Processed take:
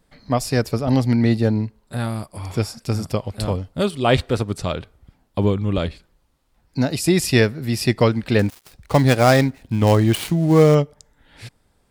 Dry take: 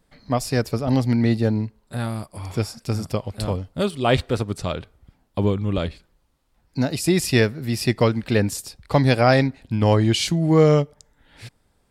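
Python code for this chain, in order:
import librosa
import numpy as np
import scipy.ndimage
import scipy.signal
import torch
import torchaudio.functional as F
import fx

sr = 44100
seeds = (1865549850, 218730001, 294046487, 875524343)

y = fx.dead_time(x, sr, dead_ms=0.1, at=(8.39, 10.75))
y = y * librosa.db_to_amplitude(2.0)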